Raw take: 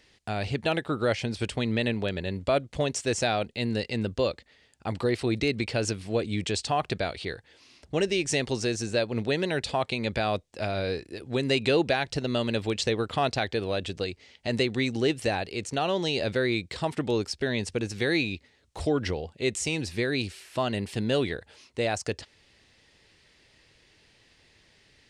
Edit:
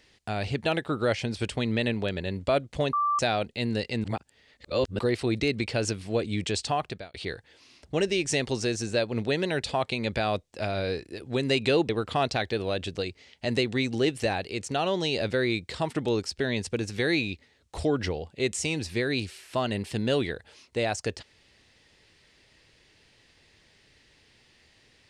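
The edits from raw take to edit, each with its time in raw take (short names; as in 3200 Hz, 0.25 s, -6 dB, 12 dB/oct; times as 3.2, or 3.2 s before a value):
2.93–3.19 bleep 1170 Hz -22 dBFS
4.04–4.99 reverse
6.7–7.14 fade out
11.89–12.91 cut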